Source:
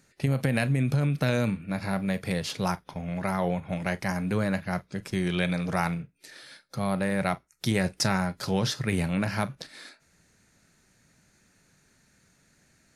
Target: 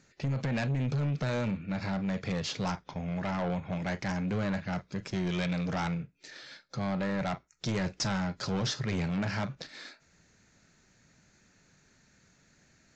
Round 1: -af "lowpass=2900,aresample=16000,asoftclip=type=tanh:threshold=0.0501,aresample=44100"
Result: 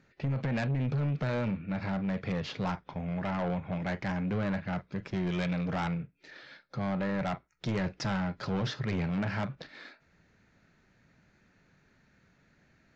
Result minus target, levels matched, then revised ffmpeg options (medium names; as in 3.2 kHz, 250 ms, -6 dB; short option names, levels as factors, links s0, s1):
4 kHz band -4.5 dB
-af "aresample=16000,asoftclip=type=tanh:threshold=0.0501,aresample=44100"